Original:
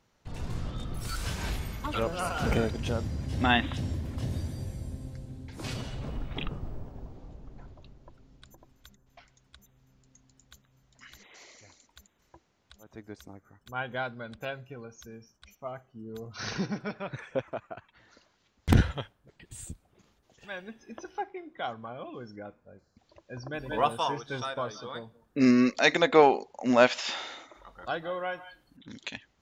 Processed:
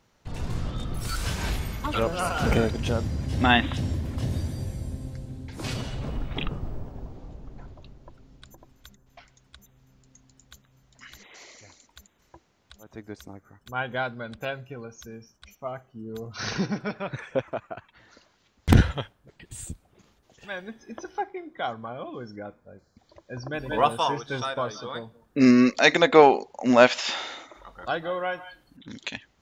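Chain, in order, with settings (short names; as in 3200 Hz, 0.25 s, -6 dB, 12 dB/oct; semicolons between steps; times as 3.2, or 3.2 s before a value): 20.53–23.39 notch 2700 Hz, Q 6.3; gain +4.5 dB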